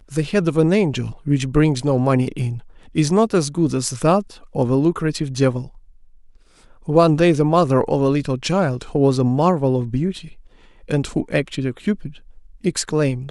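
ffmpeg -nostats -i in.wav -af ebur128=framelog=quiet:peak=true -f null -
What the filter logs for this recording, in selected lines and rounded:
Integrated loudness:
  I:         -19.2 LUFS
  Threshold: -29.9 LUFS
Loudness range:
  LRA:         5.0 LU
  Threshold: -39.8 LUFS
  LRA low:   -22.6 LUFS
  LRA high:  -17.6 LUFS
True peak:
  Peak:       -2.3 dBFS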